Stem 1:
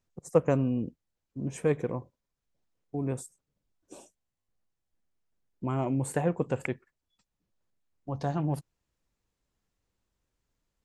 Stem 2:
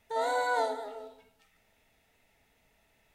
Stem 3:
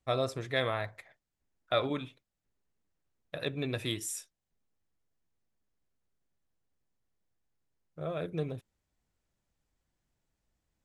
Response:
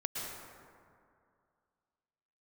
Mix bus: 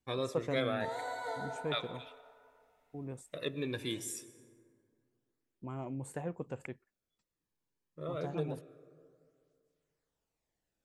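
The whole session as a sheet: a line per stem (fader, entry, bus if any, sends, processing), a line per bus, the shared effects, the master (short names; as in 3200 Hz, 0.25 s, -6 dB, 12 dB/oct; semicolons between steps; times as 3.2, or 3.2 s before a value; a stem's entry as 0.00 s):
-11.5 dB, 0.00 s, no send, dry
-7.0 dB, 0.70 s, send -7.5 dB, de-hum 54.95 Hz, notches 30; auto duck -15 dB, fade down 1.85 s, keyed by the first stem
-2.0 dB, 0.00 s, send -15.5 dB, tape flanging out of phase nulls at 0.26 Hz, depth 1.6 ms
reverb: on, RT60 2.3 s, pre-delay 0.103 s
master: dry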